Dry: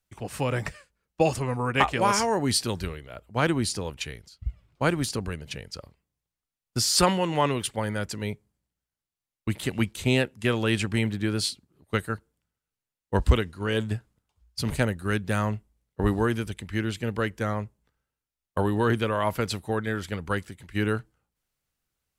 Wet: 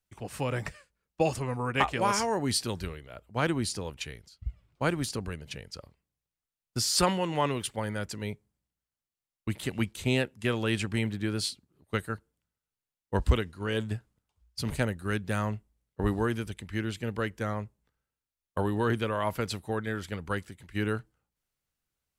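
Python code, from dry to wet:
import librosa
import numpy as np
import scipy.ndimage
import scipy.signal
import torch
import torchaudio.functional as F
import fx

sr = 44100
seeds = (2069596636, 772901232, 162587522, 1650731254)

y = fx.dmg_crackle(x, sr, seeds[0], per_s=fx.line((7.39, 190.0), (7.82, 48.0)), level_db=-46.0, at=(7.39, 7.82), fade=0.02)
y = F.gain(torch.from_numpy(y), -4.0).numpy()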